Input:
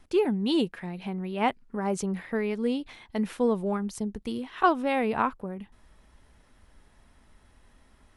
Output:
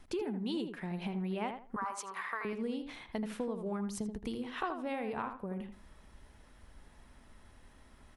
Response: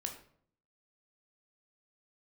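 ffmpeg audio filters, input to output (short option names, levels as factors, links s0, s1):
-filter_complex "[0:a]asettb=1/sr,asplit=3[s0][s1][s2];[s0]atrim=end=1.764[s3];[s1]atrim=start=1.76:end=2.45,asetpts=PTS-STARTPTS,afade=t=in:d=0.004:c=qsin,afade=t=out:st=0.686:d=0.004:c=qsin,highpass=f=1100:t=q:w=6.3[s4];[s2]atrim=start=2.446[s5];[s3][s4]acrossfade=d=0.004:c1=hsin:c2=qsin[s6];[s6][s5]acrossfade=d=0.004:c1=qsin:c2=hsin,acompressor=threshold=0.0178:ratio=6,asplit=2[s7][s8];[s8]adelay=80,lowpass=f=2000:p=1,volume=0.473,asplit=2[s9][s10];[s10]adelay=80,lowpass=f=2000:p=1,volume=0.25,asplit=2[s11][s12];[s12]adelay=80,lowpass=f=2000:p=1,volume=0.25[s13];[s7][s9][s11][s13]amix=inputs=4:normalize=0"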